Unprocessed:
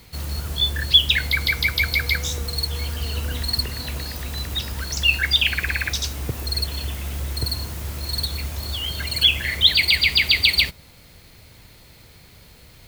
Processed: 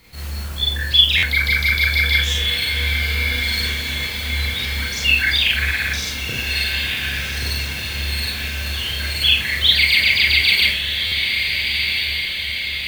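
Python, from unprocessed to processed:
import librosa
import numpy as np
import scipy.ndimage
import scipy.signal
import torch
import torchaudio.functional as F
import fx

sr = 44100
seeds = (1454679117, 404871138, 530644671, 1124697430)

p1 = fx.peak_eq(x, sr, hz=2100.0, db=6.0, octaves=1.1)
p2 = p1 + fx.echo_diffused(p1, sr, ms=1436, feedback_pct=60, wet_db=-5, dry=0)
p3 = fx.rev_schroeder(p2, sr, rt60_s=0.3, comb_ms=29, drr_db=-3.5)
p4 = fx.buffer_glitch(p3, sr, at_s=(1.17, 11.06), block=512, repeats=4)
y = p4 * librosa.db_to_amplitude(-6.0)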